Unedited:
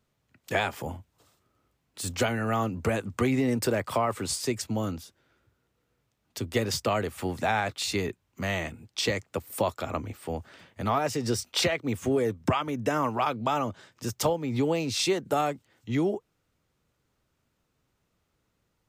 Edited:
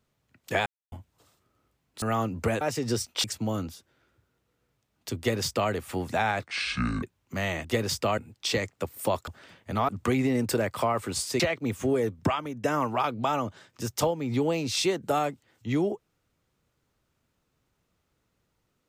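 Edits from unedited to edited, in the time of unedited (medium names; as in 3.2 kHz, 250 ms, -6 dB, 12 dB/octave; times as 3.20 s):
0.66–0.92 s: mute
2.02–2.43 s: delete
3.02–4.53 s: swap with 10.99–11.62 s
6.47–7.00 s: copy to 8.71 s
7.75–8.09 s: speed 60%
9.81–10.38 s: delete
12.36–12.86 s: fade out equal-power, to -9 dB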